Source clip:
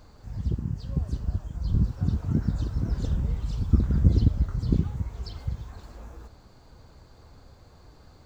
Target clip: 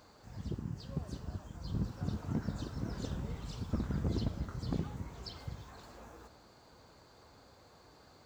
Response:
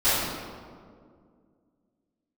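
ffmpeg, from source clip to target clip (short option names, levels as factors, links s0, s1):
-filter_complex "[0:a]highpass=f=330:p=1,asoftclip=type=hard:threshold=0.0562,asplit=2[s0][s1];[1:a]atrim=start_sample=2205,adelay=14[s2];[s1][s2]afir=irnorm=-1:irlink=0,volume=0.0237[s3];[s0][s3]amix=inputs=2:normalize=0,volume=0.841"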